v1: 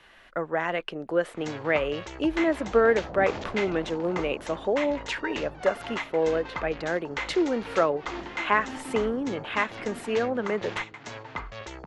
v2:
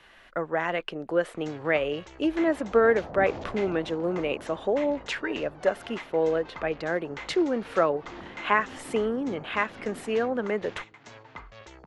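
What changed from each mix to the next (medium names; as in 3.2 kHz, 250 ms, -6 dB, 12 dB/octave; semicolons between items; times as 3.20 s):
first sound -8.0 dB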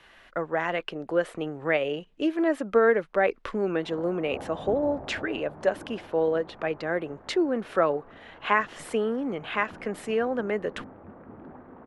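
first sound: muted; second sound: entry +1.50 s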